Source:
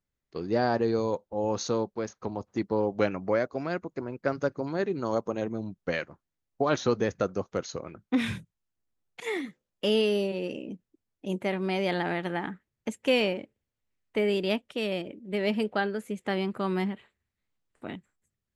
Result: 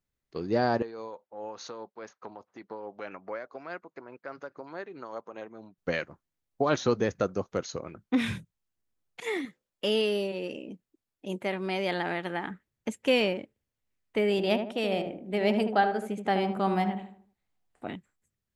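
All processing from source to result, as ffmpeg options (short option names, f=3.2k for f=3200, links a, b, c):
-filter_complex "[0:a]asettb=1/sr,asplit=3[a][b][c];[a]atrim=end=0.824[d];[b]atrim=start=0.82:end=5.78,asetpts=PTS-STARTPTS,afade=t=in:d=0.004:c=qsin,afade=t=out:st=4.956:d=0.004:c=qsin,acompressor=threshold=-30dB:ratio=2:attack=3.2:release=140:knee=1:detection=peak,tremolo=f=4.8:d=0.39,bandpass=f=1.4k:t=q:w=0.63[e];[c]atrim=start=5.776[f];[d][e]acrossfade=d=0.004:c1=hsin:c2=qsin[g];[g][f]acrossfade=d=0.004:c1=qsin:c2=hsin,asettb=1/sr,asplit=3[h][i][j];[h]atrim=end=9.454[k];[i]atrim=start=9.45:end=12.51,asetpts=PTS-STARTPTS,afade=t=in:d=0.004:c=qsin,afade=t=out:st=3.056:d=0.004:c=qsin,lowshelf=f=280:g=-6.5,bandreject=f=6k:w=27[l];[j]atrim=start=12.506[m];[k][l]acrossfade=d=0.004:c1=hsin:c2=qsin[n];[n][m]acrossfade=d=0.004:c1=qsin:c2=hsin,asettb=1/sr,asplit=3[o][p][q];[o]atrim=end=14.314[r];[p]atrim=start=14.31:end=17.88,asetpts=PTS-STARTPTS,afade=t=in:d=0.004:c=qsin,afade=t=out:st=3.566:d=0.004:c=qsin,equalizer=f=750:t=o:w=0.3:g=11,asplit=2[s][t];[t]adelay=77,lowpass=f=1.3k:p=1,volume=-6dB,asplit=2[u][v];[v]adelay=77,lowpass=f=1.3k:p=1,volume=0.42,asplit=2[w][x];[x]adelay=77,lowpass=f=1.3k:p=1,volume=0.42,asplit=2[y][z];[z]adelay=77,lowpass=f=1.3k:p=1,volume=0.42,asplit=2[aa][ab];[ab]adelay=77,lowpass=f=1.3k:p=1,volume=0.42[ac];[s][u][w][y][aa][ac]amix=inputs=6:normalize=0,atrim=end_sample=157437[ad];[q]atrim=start=17.876[ae];[r][ad]acrossfade=d=0.004:c1=hsin:c2=qsin[af];[af][ae]acrossfade=d=0.004:c1=qsin:c2=hsin"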